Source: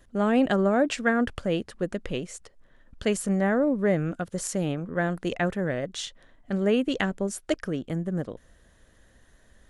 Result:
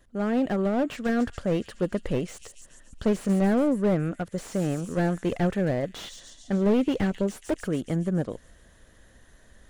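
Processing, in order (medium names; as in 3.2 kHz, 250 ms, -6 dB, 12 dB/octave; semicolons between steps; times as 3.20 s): feedback echo behind a high-pass 140 ms, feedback 63%, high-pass 5 kHz, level -8.5 dB; gain riding 2 s; slew-rate limiter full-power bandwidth 45 Hz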